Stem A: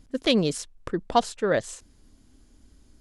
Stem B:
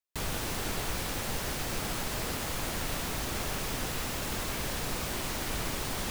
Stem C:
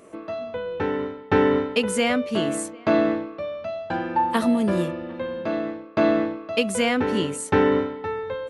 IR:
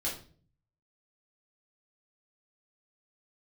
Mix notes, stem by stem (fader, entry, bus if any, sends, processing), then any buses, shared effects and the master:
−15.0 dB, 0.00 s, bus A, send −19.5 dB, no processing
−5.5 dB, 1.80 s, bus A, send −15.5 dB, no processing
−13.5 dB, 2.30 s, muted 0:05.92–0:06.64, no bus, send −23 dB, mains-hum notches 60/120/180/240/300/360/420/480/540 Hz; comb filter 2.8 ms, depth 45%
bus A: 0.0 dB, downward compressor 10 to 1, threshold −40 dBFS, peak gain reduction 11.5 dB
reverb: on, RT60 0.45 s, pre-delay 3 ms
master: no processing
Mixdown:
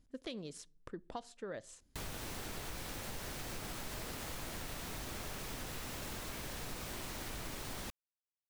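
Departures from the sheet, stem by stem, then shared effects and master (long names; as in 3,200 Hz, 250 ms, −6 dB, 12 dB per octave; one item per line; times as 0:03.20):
stem C: muted
reverb return −10.0 dB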